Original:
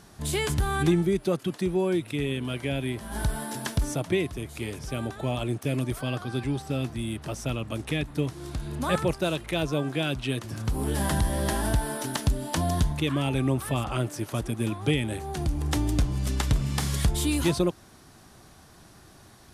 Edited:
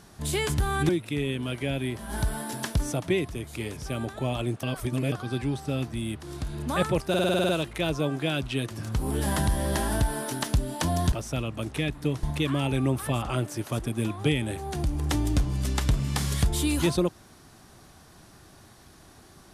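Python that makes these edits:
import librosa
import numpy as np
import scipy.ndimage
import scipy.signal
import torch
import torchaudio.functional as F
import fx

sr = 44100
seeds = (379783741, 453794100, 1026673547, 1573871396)

y = fx.edit(x, sr, fx.cut(start_s=0.89, length_s=1.02),
    fx.reverse_span(start_s=5.65, length_s=0.49),
    fx.move(start_s=7.25, length_s=1.11, to_s=12.85),
    fx.stutter(start_s=9.22, slice_s=0.05, count=9), tone=tone)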